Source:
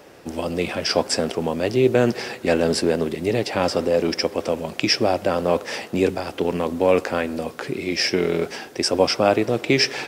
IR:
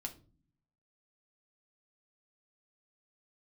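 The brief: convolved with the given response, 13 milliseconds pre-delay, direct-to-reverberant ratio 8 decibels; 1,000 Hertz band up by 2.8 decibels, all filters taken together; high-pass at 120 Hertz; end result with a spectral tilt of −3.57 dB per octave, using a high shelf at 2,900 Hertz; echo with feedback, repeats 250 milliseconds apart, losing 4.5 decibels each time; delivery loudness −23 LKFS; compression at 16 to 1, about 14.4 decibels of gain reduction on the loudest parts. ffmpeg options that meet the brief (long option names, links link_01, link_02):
-filter_complex "[0:a]highpass=120,equalizer=frequency=1000:width_type=o:gain=3.5,highshelf=frequency=2900:gain=4,acompressor=threshold=-25dB:ratio=16,aecho=1:1:250|500|750|1000|1250|1500|1750|2000|2250:0.596|0.357|0.214|0.129|0.0772|0.0463|0.0278|0.0167|0.01,asplit=2[link_01][link_02];[1:a]atrim=start_sample=2205,adelay=13[link_03];[link_02][link_03]afir=irnorm=-1:irlink=0,volume=-6dB[link_04];[link_01][link_04]amix=inputs=2:normalize=0,volume=5dB"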